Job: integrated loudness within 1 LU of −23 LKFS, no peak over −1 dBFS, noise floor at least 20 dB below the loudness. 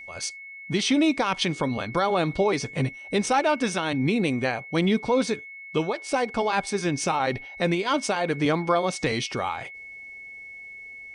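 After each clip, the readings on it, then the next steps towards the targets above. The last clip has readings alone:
interfering tone 2,200 Hz; level of the tone −39 dBFS; integrated loudness −25.5 LKFS; sample peak −11.0 dBFS; target loudness −23.0 LKFS
→ notch filter 2,200 Hz, Q 30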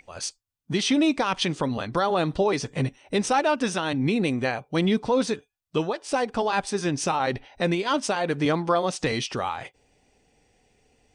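interfering tone none found; integrated loudness −25.5 LKFS; sample peak −11.0 dBFS; target loudness −23.0 LKFS
→ level +2.5 dB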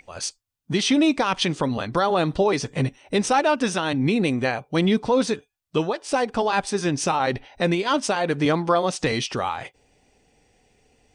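integrated loudness −23.0 LKFS; sample peak −8.5 dBFS; background noise floor −73 dBFS

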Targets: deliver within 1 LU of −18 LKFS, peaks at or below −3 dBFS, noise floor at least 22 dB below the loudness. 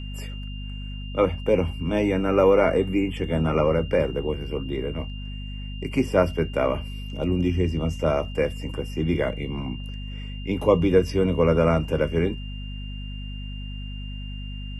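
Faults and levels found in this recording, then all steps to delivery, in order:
mains hum 50 Hz; hum harmonics up to 250 Hz; level of the hum −31 dBFS; interfering tone 2,800 Hz; level of the tone −42 dBFS; integrated loudness −24.0 LKFS; sample peak −4.5 dBFS; target loudness −18.0 LKFS
→ hum removal 50 Hz, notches 5
notch filter 2,800 Hz, Q 30
level +6 dB
brickwall limiter −3 dBFS

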